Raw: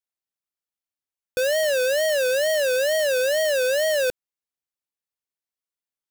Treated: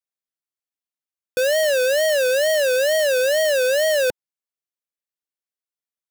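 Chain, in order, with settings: high-pass 150 Hz 12 dB/octave; band-stop 900 Hz, Q 11; waveshaping leveller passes 2

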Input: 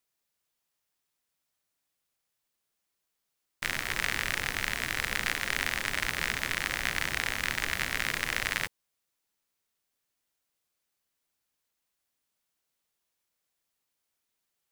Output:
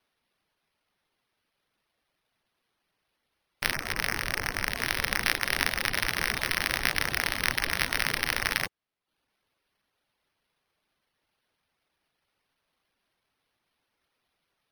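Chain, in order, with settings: 3.76–4.79 s: median filter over 9 samples; careless resampling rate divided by 6×, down none, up hold; reverb removal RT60 0.52 s; spectral gate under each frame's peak -30 dB strong; trim +4 dB

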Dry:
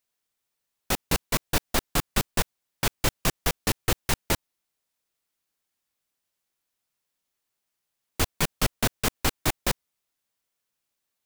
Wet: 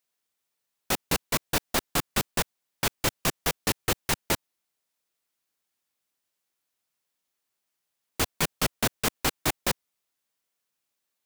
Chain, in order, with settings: bass shelf 83 Hz -10.5 dB

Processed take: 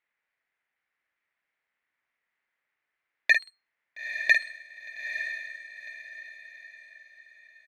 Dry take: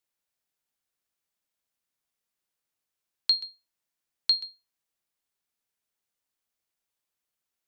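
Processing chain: self-modulated delay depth 0.81 ms; resonant low-pass 2 kHz, resonance Q 4.2; bass shelf 280 Hz -9.5 dB; doubling 50 ms -7 dB; echo that smears into a reverb 908 ms, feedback 40%, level -8 dB; trim +3.5 dB

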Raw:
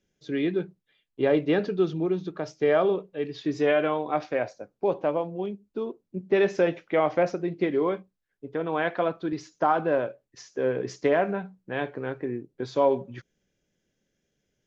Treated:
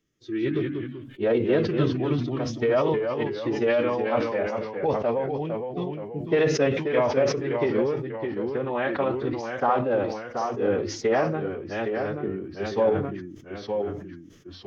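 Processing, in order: formant-preserving pitch shift -4 st; ever faster or slower copies 157 ms, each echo -1 st, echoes 2, each echo -6 dB; decay stretcher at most 58 dB/s

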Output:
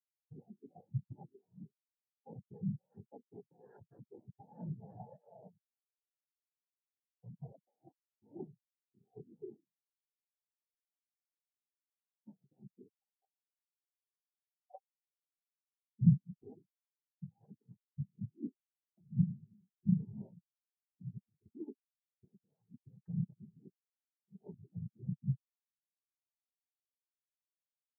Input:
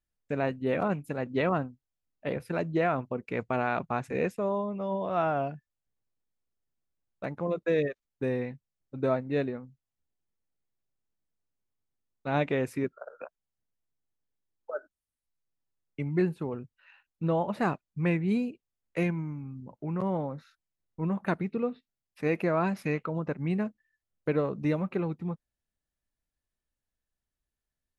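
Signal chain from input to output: bass shelf 170 Hz +5.5 dB; compressor with a negative ratio -29 dBFS, ratio -0.5; noise-vocoded speech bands 6; spectral contrast expander 4:1; trim +1 dB

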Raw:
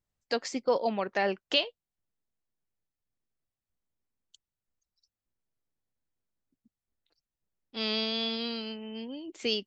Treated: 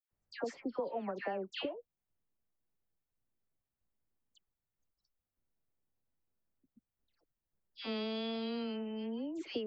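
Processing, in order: peaking EQ 6.2 kHz -15 dB 2.2 oct; compression 6:1, threshold -36 dBFS, peak gain reduction 13.5 dB; phase dispersion lows, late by 117 ms, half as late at 1.7 kHz; trim +1.5 dB

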